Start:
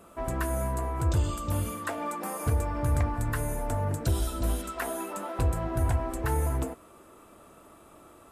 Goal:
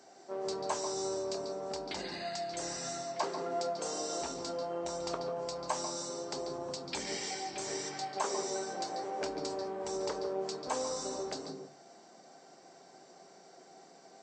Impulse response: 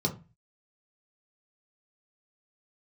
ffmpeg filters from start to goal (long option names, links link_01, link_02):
-filter_complex "[0:a]asetrate=25798,aresample=44100,highpass=480,asplit=2[link_01][link_02];[1:a]atrim=start_sample=2205,adelay=140[link_03];[link_02][link_03]afir=irnorm=-1:irlink=0,volume=-16dB[link_04];[link_01][link_04]amix=inputs=2:normalize=0"